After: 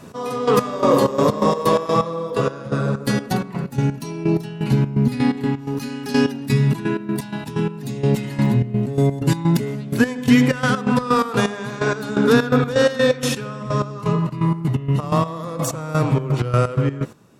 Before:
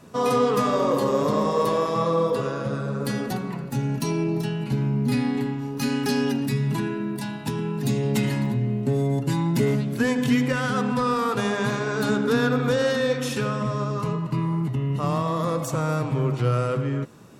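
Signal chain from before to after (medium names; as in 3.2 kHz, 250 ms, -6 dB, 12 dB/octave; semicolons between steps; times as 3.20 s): trance gate "x...x..xx.x.x.x." 127 bpm -12 dB; trim +7.5 dB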